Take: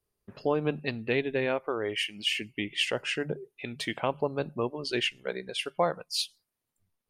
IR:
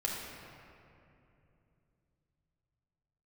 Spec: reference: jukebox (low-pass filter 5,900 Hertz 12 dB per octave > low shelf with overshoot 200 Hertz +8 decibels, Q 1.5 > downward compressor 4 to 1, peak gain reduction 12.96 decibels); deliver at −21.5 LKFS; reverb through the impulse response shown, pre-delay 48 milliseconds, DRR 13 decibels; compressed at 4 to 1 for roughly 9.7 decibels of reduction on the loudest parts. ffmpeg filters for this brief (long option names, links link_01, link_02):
-filter_complex "[0:a]acompressor=threshold=-34dB:ratio=4,asplit=2[link_01][link_02];[1:a]atrim=start_sample=2205,adelay=48[link_03];[link_02][link_03]afir=irnorm=-1:irlink=0,volume=-17.5dB[link_04];[link_01][link_04]amix=inputs=2:normalize=0,lowpass=5900,lowshelf=frequency=200:width_type=q:width=1.5:gain=8,acompressor=threshold=-43dB:ratio=4,volume=24dB"